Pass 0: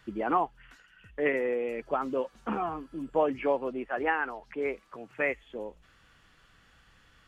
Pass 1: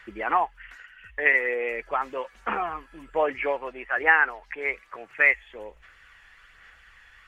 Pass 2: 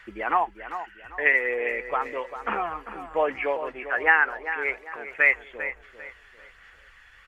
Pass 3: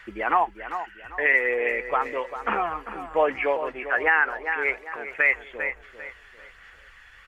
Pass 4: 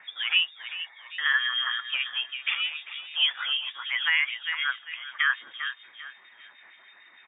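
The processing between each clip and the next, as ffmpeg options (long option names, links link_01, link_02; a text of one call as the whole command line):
ffmpeg -i in.wav -af "equalizer=frequency=125:width_type=o:width=1:gain=-11,equalizer=frequency=250:width_type=o:width=1:gain=-11,equalizer=frequency=2000:width_type=o:width=1:gain=12,equalizer=frequency=4000:width_type=o:width=1:gain=-3,aphaser=in_gain=1:out_gain=1:delay=1.2:decay=0.3:speed=1.2:type=sinusoidal,volume=2dB" out.wav
ffmpeg -i in.wav -filter_complex "[0:a]asplit=2[link_01][link_02];[link_02]adelay=396,lowpass=frequency=2800:poles=1,volume=-10.5dB,asplit=2[link_03][link_04];[link_04]adelay=396,lowpass=frequency=2800:poles=1,volume=0.36,asplit=2[link_05][link_06];[link_06]adelay=396,lowpass=frequency=2800:poles=1,volume=0.36,asplit=2[link_07][link_08];[link_08]adelay=396,lowpass=frequency=2800:poles=1,volume=0.36[link_09];[link_01][link_03][link_05][link_07][link_09]amix=inputs=5:normalize=0" out.wav
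ffmpeg -i in.wav -af "alimiter=level_in=11dB:limit=-1dB:release=50:level=0:latency=1,volume=-8.5dB" out.wav
ffmpeg -i in.wav -filter_complex "[0:a]lowpass=frequency=3100:width_type=q:width=0.5098,lowpass=frequency=3100:width_type=q:width=0.6013,lowpass=frequency=3100:width_type=q:width=0.9,lowpass=frequency=3100:width_type=q:width=2.563,afreqshift=-3700,acrossover=split=1800[link_01][link_02];[link_01]aeval=exprs='val(0)*(1-0.7/2+0.7/2*cos(2*PI*6.6*n/s))':channel_layout=same[link_03];[link_02]aeval=exprs='val(0)*(1-0.7/2-0.7/2*cos(2*PI*6.6*n/s))':channel_layout=same[link_04];[link_03][link_04]amix=inputs=2:normalize=0" out.wav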